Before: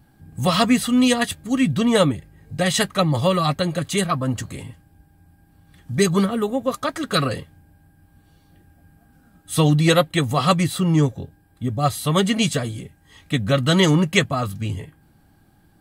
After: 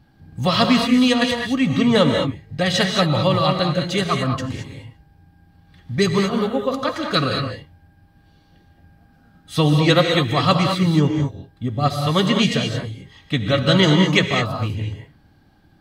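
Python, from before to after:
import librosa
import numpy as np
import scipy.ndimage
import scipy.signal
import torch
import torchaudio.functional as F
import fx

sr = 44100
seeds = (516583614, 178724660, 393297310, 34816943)

y = fx.high_shelf_res(x, sr, hz=6500.0, db=-10.0, q=1.5)
y = fx.rev_gated(y, sr, seeds[0], gate_ms=240, shape='rising', drr_db=3.0)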